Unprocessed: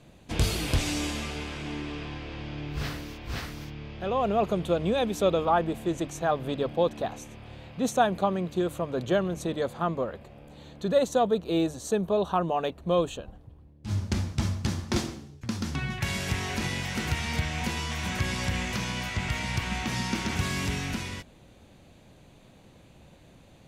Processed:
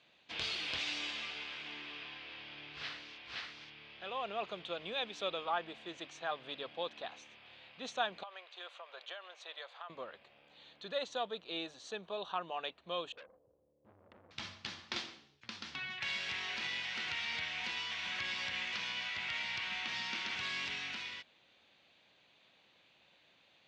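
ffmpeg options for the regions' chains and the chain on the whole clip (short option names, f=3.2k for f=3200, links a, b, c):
-filter_complex "[0:a]asettb=1/sr,asplit=3[a][b][c];[a]atrim=end=8.234[d];[b]atrim=start=8.23:end=9.9,asetpts=PTS-STARTPTS,afade=t=in:d=0.004:c=qsin,afade=t=out:st=1.666:d=0.004:c=qsin,highpass=f=580:w=0.5412,highpass=f=580:w=1.3066,highshelf=f=6.5k:g=-7,acompressor=threshold=-31dB:ratio=12:attack=3.2:release=140:knee=1:detection=peak[e];[c]atrim=start=9.896[f];[d][e]acrossfade=d=0.004:c1=hsin:c2=qsin[g];[g][f]acrossfade=d=0.004:c1=qsin:c2=hsin,asettb=1/sr,asplit=3[h][i][j];[h]atrim=end=13.124[k];[i]atrim=start=13.12:end=14.31,asetpts=PTS-STARTPTS,afade=t=in:d=0.004:c=qsin,afade=t=out:st=1.186:d=0.004:c=qsin,acompressor=threshold=-31dB:ratio=2.5:attack=3.2:release=140:knee=1:detection=peak,lowpass=f=520:t=q:w=6.4,aeval=exprs='(tanh(70.8*val(0)+0.3)-tanh(0.3))/70.8':c=same[l];[j]atrim=start=14.306[m];[k][l]acrossfade=d=0.004:c1=hsin:c2=qsin[n];[n][m]acrossfade=d=0.004:c1=qsin:c2=hsin,lowpass=f=3.7k:w=0.5412,lowpass=f=3.7k:w=1.3066,aderivative,volume=6.5dB"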